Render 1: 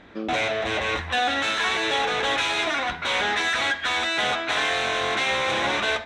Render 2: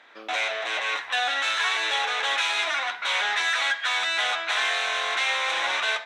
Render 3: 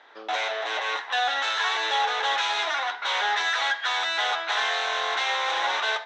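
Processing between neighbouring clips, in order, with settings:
high-pass filter 850 Hz 12 dB per octave
loudspeaker in its box 270–6,400 Hz, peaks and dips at 420 Hz +5 dB, 850 Hz +6 dB, 2,400 Hz −7 dB

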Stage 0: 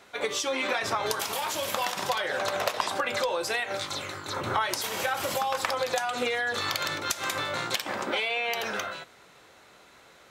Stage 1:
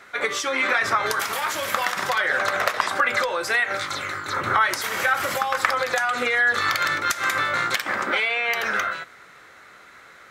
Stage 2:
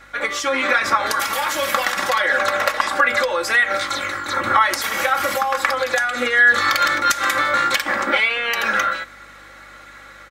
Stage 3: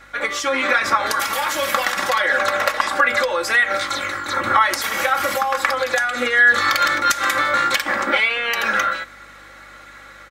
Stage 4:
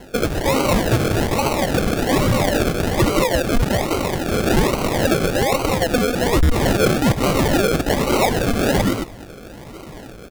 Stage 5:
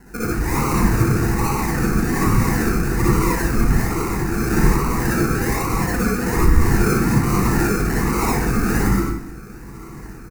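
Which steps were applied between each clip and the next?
flat-topped bell 1,600 Hz +9 dB 1.1 octaves; level +2 dB
comb filter 3.6 ms, depth 68%; automatic gain control gain up to 4 dB; mains hum 50 Hz, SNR 35 dB
no processing that can be heard
in parallel at −1.5 dB: downward compressor, threshold −24 dBFS, peak gain reduction 13.5 dB; on the sum: sample-and-hold swept by an LFO 36×, swing 60% 1.2 Hz; gain into a clipping stage and back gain 11 dB
phaser with its sweep stopped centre 1,400 Hz, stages 4; single-tap delay 194 ms −18 dB; convolution reverb RT60 0.55 s, pre-delay 51 ms, DRR −5.5 dB; level −4.5 dB

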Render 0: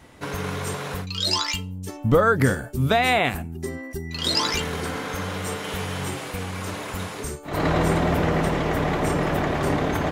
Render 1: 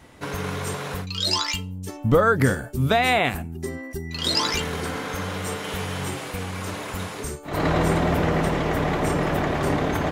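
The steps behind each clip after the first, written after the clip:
no processing that can be heard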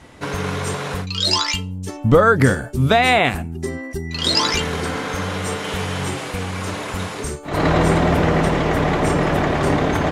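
low-pass filter 10,000 Hz 12 dB per octave
level +5 dB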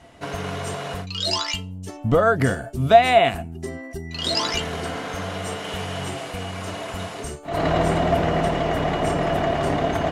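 hollow resonant body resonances 680/2,900 Hz, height 15 dB, ringing for 90 ms
level −6 dB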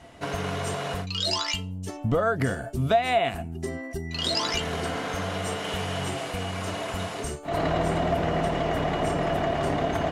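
downward compressor 2 to 1, threshold −25 dBFS, peak gain reduction 10 dB

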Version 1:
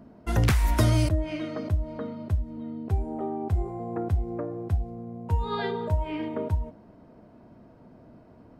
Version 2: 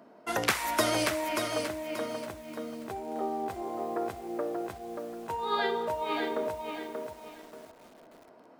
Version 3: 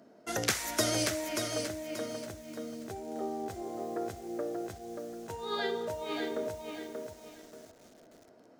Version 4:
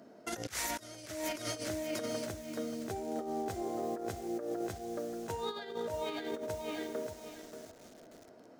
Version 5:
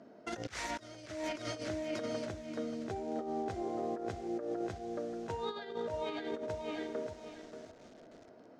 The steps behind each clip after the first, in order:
high-pass filter 470 Hz 12 dB per octave; flutter between parallel walls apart 11.1 metres, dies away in 0.21 s; feedback echo at a low word length 583 ms, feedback 35%, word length 9 bits, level −5 dB; level +3 dB
graphic EQ with 15 bands 100 Hz +5 dB, 1,000 Hz −10 dB, 2,500 Hz −4 dB, 6,300 Hz +7 dB; level −1.5 dB
compressor whose output falls as the input rises −37 dBFS, ratio −0.5
high-frequency loss of the air 110 metres

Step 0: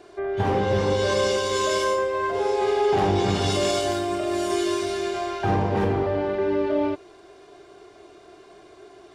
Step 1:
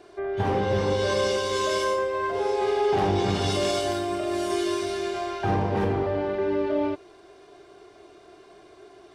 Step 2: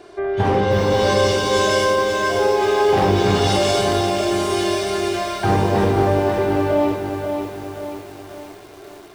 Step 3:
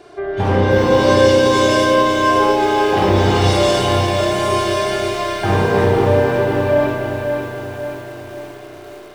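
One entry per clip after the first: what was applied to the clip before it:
notch filter 7,000 Hz, Q 22; level −2 dB
feedback echo at a low word length 536 ms, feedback 55%, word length 8 bits, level −6 dB; level +7 dB
spring reverb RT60 2.9 s, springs 32 ms, chirp 40 ms, DRR −1 dB

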